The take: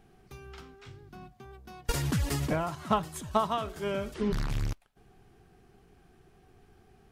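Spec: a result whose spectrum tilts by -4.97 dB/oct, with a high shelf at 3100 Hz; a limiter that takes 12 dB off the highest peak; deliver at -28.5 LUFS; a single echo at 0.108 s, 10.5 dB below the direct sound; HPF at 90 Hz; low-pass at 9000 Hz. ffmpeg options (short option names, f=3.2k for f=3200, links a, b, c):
-af "highpass=90,lowpass=9k,highshelf=f=3.1k:g=3.5,alimiter=level_in=1dB:limit=-24dB:level=0:latency=1,volume=-1dB,aecho=1:1:108:0.299,volume=7.5dB"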